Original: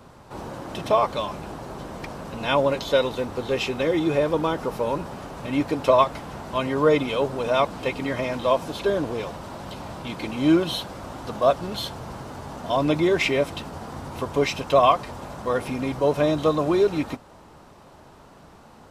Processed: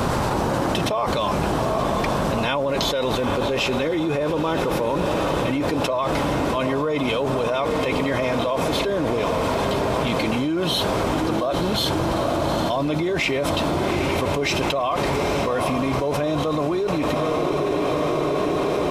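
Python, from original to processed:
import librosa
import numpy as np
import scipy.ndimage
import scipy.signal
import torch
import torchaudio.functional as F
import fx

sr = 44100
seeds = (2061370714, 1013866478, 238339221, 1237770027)

y = fx.echo_diffused(x, sr, ms=847, feedback_pct=72, wet_db=-13.5)
y = fx.env_flatten(y, sr, amount_pct=100)
y = F.gain(torch.from_numpy(y), -8.5).numpy()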